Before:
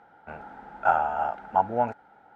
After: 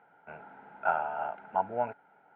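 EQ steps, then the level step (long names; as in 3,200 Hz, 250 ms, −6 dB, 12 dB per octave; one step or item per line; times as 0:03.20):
loudspeaker in its box 210–2,500 Hz, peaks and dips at 230 Hz −9 dB, 330 Hz −10 dB, 520 Hz −8 dB, 800 Hz −9 dB, 1,200 Hz −9 dB, 1,800 Hz −8 dB
+1.5 dB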